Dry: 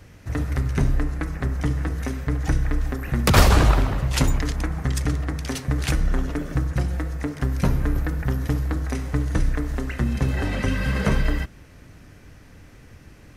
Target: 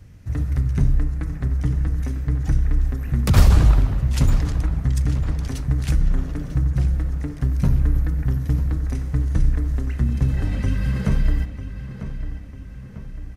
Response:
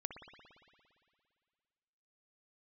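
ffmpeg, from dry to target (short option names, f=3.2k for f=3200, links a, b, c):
-filter_complex "[0:a]bass=f=250:g=12,treble=f=4k:g=3,asplit=2[a][b];[b]adelay=947,lowpass=f=4k:p=1,volume=-11dB,asplit=2[c][d];[d]adelay=947,lowpass=f=4k:p=1,volume=0.52,asplit=2[e][f];[f]adelay=947,lowpass=f=4k:p=1,volume=0.52,asplit=2[g][h];[h]adelay=947,lowpass=f=4k:p=1,volume=0.52,asplit=2[i][j];[j]adelay=947,lowpass=f=4k:p=1,volume=0.52,asplit=2[k][l];[l]adelay=947,lowpass=f=4k:p=1,volume=0.52[m];[c][e][g][i][k][m]amix=inputs=6:normalize=0[n];[a][n]amix=inputs=2:normalize=0,volume=-8.5dB"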